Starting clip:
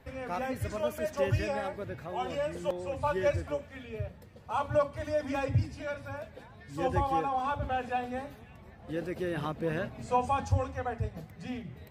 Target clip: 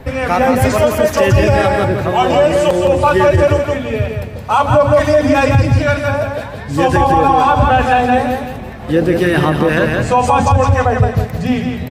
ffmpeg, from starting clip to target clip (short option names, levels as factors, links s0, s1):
-filter_complex "[0:a]acrossover=split=830[s0][s1];[s0]aeval=exprs='val(0)*(1-0.5/2+0.5/2*cos(2*PI*2.1*n/s))':c=same[s2];[s1]aeval=exprs='val(0)*(1-0.5/2-0.5/2*cos(2*PI*2.1*n/s))':c=same[s3];[s2][s3]amix=inputs=2:normalize=0,asplit=2[s4][s5];[s5]aecho=0:1:167|334|501|668:0.562|0.186|0.0612|0.0202[s6];[s4][s6]amix=inputs=2:normalize=0,alimiter=level_in=18.8:limit=0.891:release=50:level=0:latency=1,volume=0.841"